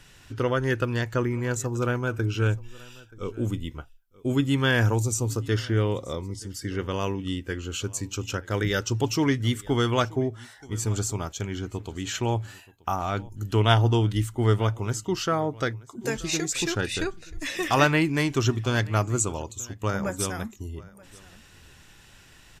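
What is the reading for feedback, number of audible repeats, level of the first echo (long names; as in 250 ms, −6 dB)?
repeats not evenly spaced, 1, −22.5 dB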